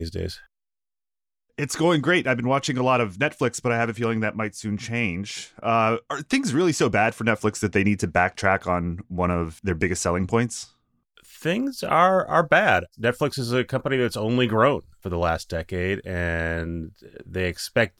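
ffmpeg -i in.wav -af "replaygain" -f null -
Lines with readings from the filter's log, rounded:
track_gain = +3.0 dB
track_peak = 0.410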